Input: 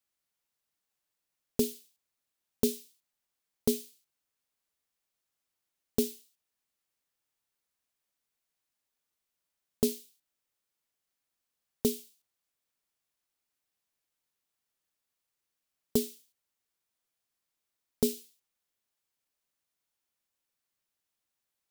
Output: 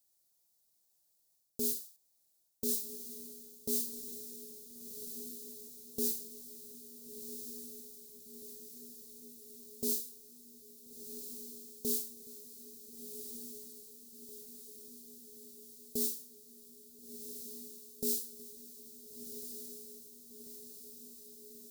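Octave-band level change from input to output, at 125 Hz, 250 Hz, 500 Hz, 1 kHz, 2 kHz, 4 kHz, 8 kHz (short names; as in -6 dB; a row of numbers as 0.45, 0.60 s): -14.5 dB, -8.5 dB, -9.0 dB, under -15 dB, under -10 dB, -2.0 dB, +3.0 dB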